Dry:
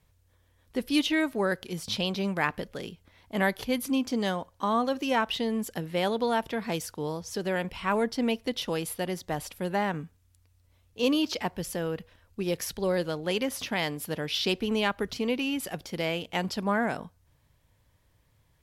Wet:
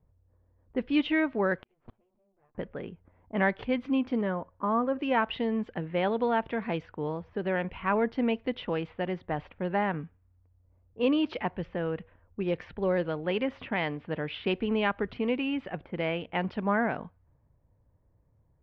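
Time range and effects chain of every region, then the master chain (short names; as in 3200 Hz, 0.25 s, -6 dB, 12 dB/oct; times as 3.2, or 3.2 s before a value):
1.58–2.55 minimum comb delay 8.4 ms + flipped gate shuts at -29 dBFS, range -34 dB
4.21–4.99 LPF 1600 Hz + notch 770 Hz, Q 6.5
whole clip: LPF 2700 Hz 24 dB/oct; low-pass opened by the level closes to 690 Hz, open at -25 dBFS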